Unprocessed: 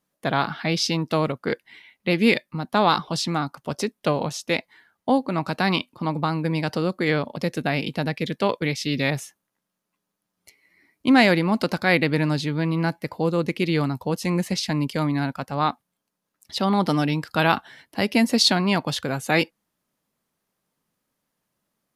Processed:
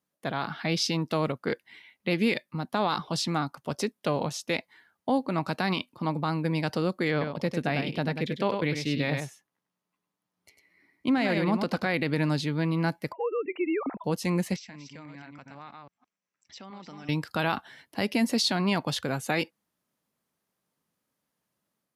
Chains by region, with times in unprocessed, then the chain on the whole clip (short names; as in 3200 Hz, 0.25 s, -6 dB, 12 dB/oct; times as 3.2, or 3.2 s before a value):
7.11–11.94 de-esser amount 40% + high shelf 5200 Hz -7.5 dB + echo 99 ms -7 dB
13.12–14.04 sine-wave speech + compressor 1.5:1, threshold -27 dBFS
14.56–17.09 reverse delay 0.165 s, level -6 dB + rippled Chebyshev low-pass 7800 Hz, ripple 9 dB + compressor 3:1, threshold -41 dBFS
whole clip: HPF 59 Hz; limiter -12.5 dBFS; AGC gain up to 3.5 dB; gain -7 dB